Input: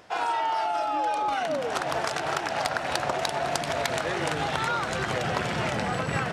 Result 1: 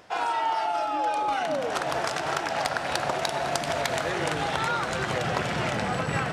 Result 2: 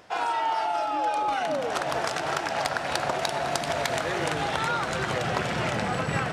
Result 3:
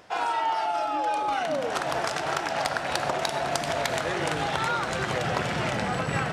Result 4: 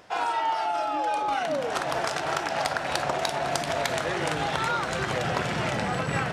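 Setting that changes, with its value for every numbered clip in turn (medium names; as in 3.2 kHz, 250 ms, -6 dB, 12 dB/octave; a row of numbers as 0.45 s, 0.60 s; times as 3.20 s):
gated-style reverb, gate: 260 ms, 440 ms, 160 ms, 80 ms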